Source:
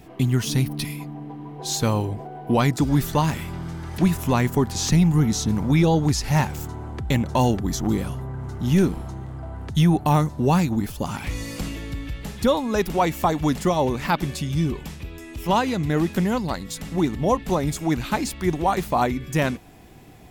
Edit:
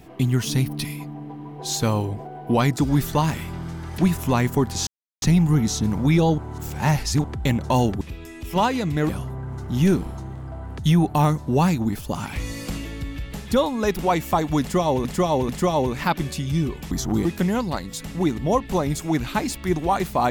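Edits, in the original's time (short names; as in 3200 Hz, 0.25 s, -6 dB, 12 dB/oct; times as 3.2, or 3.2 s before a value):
4.87 insert silence 0.35 s
6.03–6.89 reverse
7.66–8 swap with 14.94–16.02
13.52–13.96 loop, 3 plays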